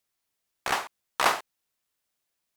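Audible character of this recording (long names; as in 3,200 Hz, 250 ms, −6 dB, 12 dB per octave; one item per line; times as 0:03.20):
background noise floor −82 dBFS
spectral slope −2.0 dB per octave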